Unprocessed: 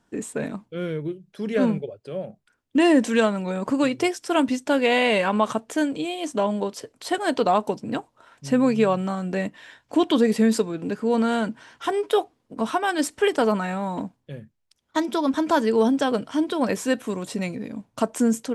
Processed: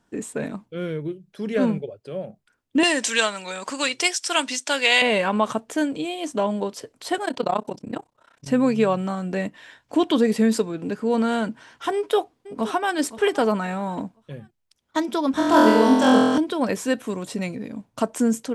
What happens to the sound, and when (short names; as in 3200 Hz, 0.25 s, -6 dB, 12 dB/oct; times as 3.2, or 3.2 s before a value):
2.83–5.02 weighting filter ITU-R 468
7.25–8.48 AM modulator 32 Hz, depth 90%
11.93–12.94 echo throw 0.52 s, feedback 30%, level -15 dB
15.33–16.38 flutter echo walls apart 4 m, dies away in 1.4 s